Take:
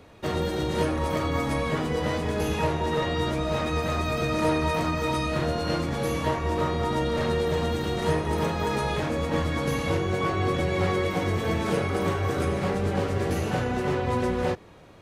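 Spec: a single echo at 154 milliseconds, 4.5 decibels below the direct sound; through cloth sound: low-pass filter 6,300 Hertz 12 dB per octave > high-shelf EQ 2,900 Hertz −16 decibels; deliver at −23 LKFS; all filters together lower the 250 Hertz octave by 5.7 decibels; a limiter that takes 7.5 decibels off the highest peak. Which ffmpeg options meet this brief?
ffmpeg -i in.wav -af "equalizer=frequency=250:width_type=o:gain=-8.5,alimiter=limit=-21.5dB:level=0:latency=1,lowpass=6300,highshelf=frequency=2900:gain=-16,aecho=1:1:154:0.596,volume=7.5dB" out.wav

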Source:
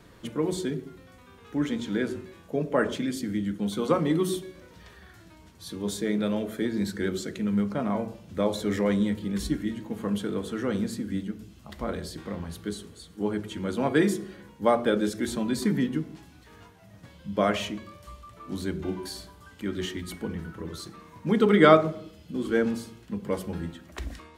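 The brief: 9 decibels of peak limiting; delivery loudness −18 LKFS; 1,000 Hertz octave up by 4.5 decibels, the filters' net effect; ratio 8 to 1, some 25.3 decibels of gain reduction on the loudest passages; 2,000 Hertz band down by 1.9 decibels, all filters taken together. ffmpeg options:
ffmpeg -i in.wav -af "equalizer=frequency=1000:width_type=o:gain=8,equalizer=frequency=2000:width_type=o:gain=-6,acompressor=threshold=-36dB:ratio=8,volume=25dB,alimiter=limit=-7dB:level=0:latency=1" out.wav

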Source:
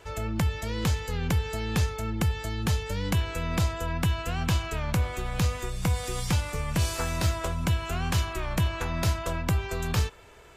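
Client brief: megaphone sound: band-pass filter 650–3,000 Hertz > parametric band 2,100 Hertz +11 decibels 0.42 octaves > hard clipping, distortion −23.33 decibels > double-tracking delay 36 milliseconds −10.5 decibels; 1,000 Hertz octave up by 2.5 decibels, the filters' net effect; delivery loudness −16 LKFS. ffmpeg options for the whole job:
ffmpeg -i in.wav -filter_complex "[0:a]highpass=650,lowpass=3000,equalizer=frequency=1000:width_type=o:gain=3.5,equalizer=frequency=2100:width_type=o:width=0.42:gain=11,asoftclip=type=hard:threshold=-17.5dB,asplit=2[link_01][link_02];[link_02]adelay=36,volume=-10.5dB[link_03];[link_01][link_03]amix=inputs=2:normalize=0,volume=16dB" out.wav

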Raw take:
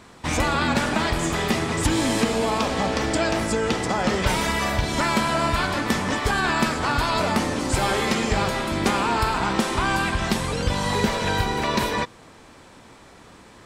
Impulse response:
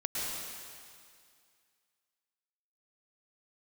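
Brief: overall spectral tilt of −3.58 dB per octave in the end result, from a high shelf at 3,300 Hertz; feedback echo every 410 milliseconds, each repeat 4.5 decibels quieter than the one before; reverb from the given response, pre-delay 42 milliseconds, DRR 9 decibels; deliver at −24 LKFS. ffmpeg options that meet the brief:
-filter_complex "[0:a]highshelf=frequency=3300:gain=4.5,aecho=1:1:410|820|1230|1640|2050|2460|2870|3280|3690:0.596|0.357|0.214|0.129|0.0772|0.0463|0.0278|0.0167|0.01,asplit=2[link_01][link_02];[1:a]atrim=start_sample=2205,adelay=42[link_03];[link_02][link_03]afir=irnorm=-1:irlink=0,volume=-15dB[link_04];[link_01][link_04]amix=inputs=2:normalize=0,volume=-4.5dB"

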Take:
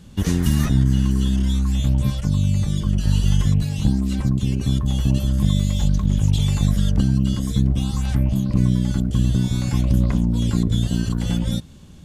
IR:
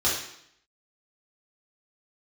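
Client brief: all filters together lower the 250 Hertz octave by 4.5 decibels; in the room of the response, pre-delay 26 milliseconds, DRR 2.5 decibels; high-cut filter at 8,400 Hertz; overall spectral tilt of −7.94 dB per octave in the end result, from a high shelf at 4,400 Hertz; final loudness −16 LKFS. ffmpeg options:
-filter_complex "[0:a]lowpass=8400,equalizer=frequency=250:width_type=o:gain=-7,highshelf=frequency=4400:gain=-7.5,asplit=2[link_01][link_02];[1:a]atrim=start_sample=2205,adelay=26[link_03];[link_02][link_03]afir=irnorm=-1:irlink=0,volume=-15dB[link_04];[link_01][link_04]amix=inputs=2:normalize=0,volume=2dB"

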